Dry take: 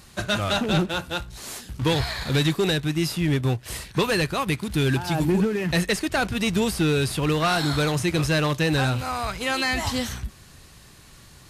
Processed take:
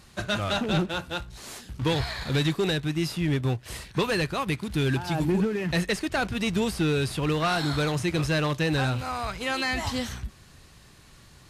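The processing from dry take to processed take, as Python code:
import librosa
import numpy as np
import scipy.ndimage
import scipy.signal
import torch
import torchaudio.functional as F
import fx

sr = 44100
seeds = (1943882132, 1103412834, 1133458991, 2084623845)

y = fx.high_shelf(x, sr, hz=8600.0, db=-7.0)
y = y * librosa.db_to_amplitude(-3.0)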